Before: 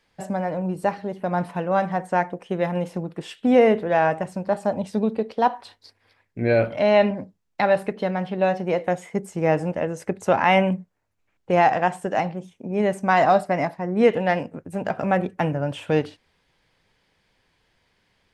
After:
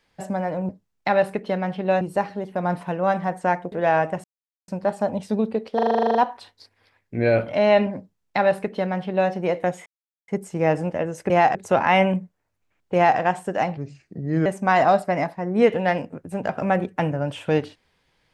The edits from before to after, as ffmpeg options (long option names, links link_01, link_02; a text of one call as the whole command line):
ffmpeg -i in.wav -filter_complex "[0:a]asplit=20[link_01][link_02][link_03][link_04][link_05][link_06][link_07][link_08][link_09][link_10][link_11][link_12][link_13][link_14][link_15][link_16][link_17][link_18][link_19][link_20];[link_01]atrim=end=0.692[link_21];[link_02]atrim=start=7.218:end=8.542[link_22];[link_03]atrim=start=0.688:end=2.402[link_23];[link_04]atrim=start=3.798:end=4.32,asetpts=PTS-STARTPTS,afade=type=out:start_time=0.518:duration=0.004:curve=hsin,apad=pad_dur=0.44[link_24];[link_05]atrim=start=4.32:end=5.432,asetpts=PTS-STARTPTS,afade=type=in:duration=0.004:curve=hsin[link_25];[link_06]atrim=start=5.388:end=5.432[link_26];[link_07]atrim=start=5.388:end=5.432[link_27];[link_08]atrim=start=5.388:end=5.432[link_28];[link_09]atrim=start=5.388:end=5.432[link_29];[link_10]atrim=start=5.388:end=5.432[link_30];[link_11]atrim=start=5.388:end=5.432[link_31];[link_12]atrim=start=5.388:end=5.432[link_32];[link_13]atrim=start=5.388:end=5.432[link_33];[link_14]atrim=start=5.388:end=5.432[link_34];[link_15]atrim=start=5.388:end=9.1,asetpts=PTS-STARTPTS,afade=type=out:start_time=3.708:duration=0.004:curve=hsin,apad=pad_dur=0.42[link_35];[link_16]atrim=start=9.1:end=10.122,asetpts=PTS-STARTPTS,afade=type=in:duration=0.004:curve=hsin[link_36];[link_17]atrim=start=11.508:end=11.762[link_37];[link_18]atrim=start=10.118:end=12.344[link_38];[link_19]atrim=start=12.34:end=12.87,asetpts=PTS-STARTPTS,asetrate=33957,aresample=44100[link_39];[link_20]atrim=start=12.866[link_40];[link_21][link_22]acrossfade=duration=0.004:curve1=hsin:curve2=hsin[link_41];[link_41][link_23]acrossfade=duration=0.004:curve1=hsin:curve2=hsin[link_42];[link_24][link_25]concat=n=2:v=0:a=1[link_43];[link_42][link_43]acrossfade=duration=0.004:curve1=hsin:curve2=hsin[link_44];[link_44][link_26]acrossfade=duration=0.004:curve1=hsin:curve2=hsin[link_45];[link_45][link_27]acrossfade=duration=0.004:curve1=hsin:curve2=hsin[link_46];[link_46][link_28]acrossfade=duration=0.004:curve1=hsin:curve2=hsin[link_47];[link_47][link_29]acrossfade=duration=0.004:curve1=hsin:curve2=hsin[link_48];[link_48][link_30]acrossfade=duration=0.004:curve1=hsin:curve2=hsin[link_49];[link_49][link_31]acrossfade=duration=0.004:curve1=hsin:curve2=hsin[link_50];[link_50][link_32]acrossfade=duration=0.004:curve1=hsin:curve2=hsin[link_51];[link_51][link_33]acrossfade=duration=0.004:curve1=hsin:curve2=hsin[link_52];[link_52][link_34]acrossfade=duration=0.004:curve1=hsin:curve2=hsin[link_53];[link_35][link_36]concat=n=2:v=0:a=1[link_54];[link_53][link_54]acrossfade=duration=0.004:curve1=hsin:curve2=hsin[link_55];[link_55][link_37]acrossfade=duration=0.004:curve1=hsin:curve2=hsin[link_56];[link_56][link_38]acrossfade=duration=0.004:curve1=hsin:curve2=hsin[link_57];[link_57][link_39]acrossfade=duration=0.004:curve1=hsin:curve2=hsin[link_58];[link_58][link_40]acrossfade=duration=0.004:curve1=hsin:curve2=hsin" out.wav